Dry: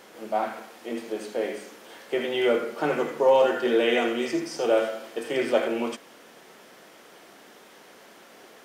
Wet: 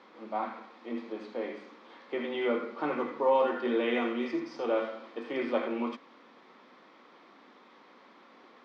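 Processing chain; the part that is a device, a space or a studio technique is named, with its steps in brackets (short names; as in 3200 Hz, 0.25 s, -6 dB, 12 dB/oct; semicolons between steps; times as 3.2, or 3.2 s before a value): kitchen radio (speaker cabinet 220–3900 Hz, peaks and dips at 250 Hz +6 dB, 420 Hz -5 dB, 660 Hz -7 dB, 1100 Hz +6 dB, 1600 Hz -6 dB, 2900 Hz -8 dB); gain -4 dB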